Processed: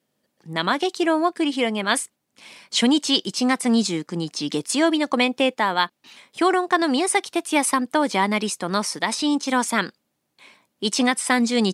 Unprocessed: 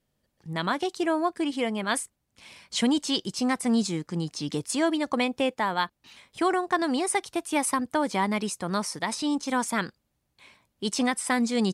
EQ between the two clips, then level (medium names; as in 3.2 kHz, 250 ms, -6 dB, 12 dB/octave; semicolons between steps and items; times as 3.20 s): Chebyshev high-pass 230 Hz, order 2; dynamic bell 3.2 kHz, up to +4 dB, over -45 dBFS, Q 0.77; +5.5 dB